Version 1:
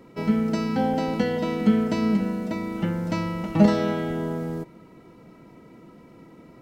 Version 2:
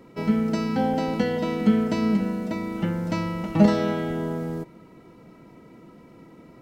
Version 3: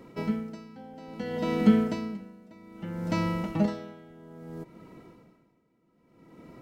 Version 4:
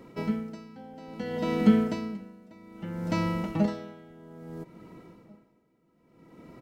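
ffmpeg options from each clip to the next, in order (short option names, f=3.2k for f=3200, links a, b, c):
-af anull
-af "aeval=exprs='val(0)*pow(10,-23*(0.5-0.5*cos(2*PI*0.61*n/s))/20)':c=same"
-filter_complex "[0:a]asplit=2[a][b];[b]adelay=1691,volume=-28dB,highshelf=f=4k:g=-38[c];[a][c]amix=inputs=2:normalize=0"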